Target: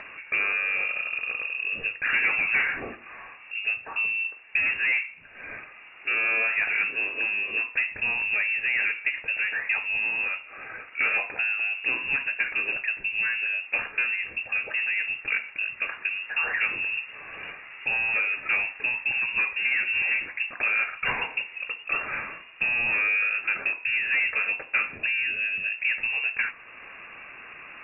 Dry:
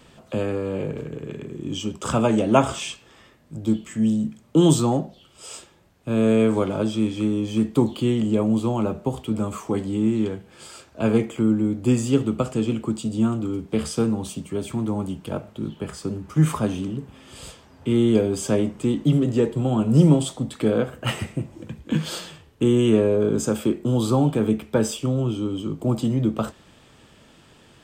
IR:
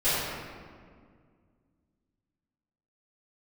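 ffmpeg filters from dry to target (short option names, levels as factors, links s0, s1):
-filter_complex "[0:a]asplit=2[s0][s1];[s1]highpass=f=720:p=1,volume=7.94,asoftclip=type=tanh:threshold=0.794[s2];[s0][s2]amix=inputs=2:normalize=0,lowpass=f=1500:p=1,volume=0.501,acrossover=split=750[s3][s4];[s3]acompressor=threshold=0.0501:ratio=6[s5];[s4]asoftclip=type=tanh:threshold=0.0668[s6];[s5][s6]amix=inputs=2:normalize=0,lowpass=f=2500:t=q:w=0.5098,lowpass=f=2500:t=q:w=0.6013,lowpass=f=2500:t=q:w=0.9,lowpass=f=2500:t=q:w=2.563,afreqshift=-2900,acompressor=mode=upward:threshold=0.0141:ratio=2.5"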